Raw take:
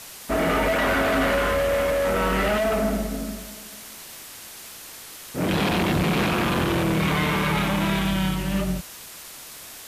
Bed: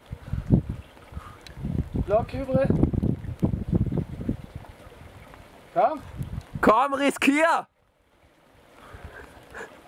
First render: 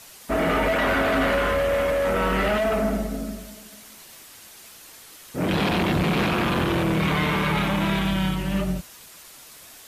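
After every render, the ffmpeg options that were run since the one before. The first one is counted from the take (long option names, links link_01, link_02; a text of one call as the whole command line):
ffmpeg -i in.wav -af "afftdn=noise_reduction=6:noise_floor=-41" out.wav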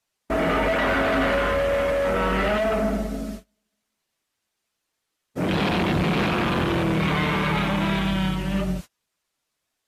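ffmpeg -i in.wav -af "agate=range=-31dB:threshold=-33dB:ratio=16:detection=peak,highshelf=frequency=11000:gain=-12" out.wav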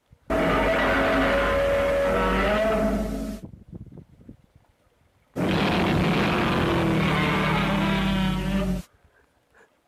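ffmpeg -i in.wav -i bed.wav -filter_complex "[1:a]volume=-17dB[link_01];[0:a][link_01]amix=inputs=2:normalize=0" out.wav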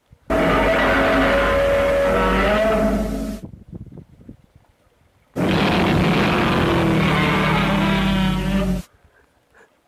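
ffmpeg -i in.wav -af "volume=5dB" out.wav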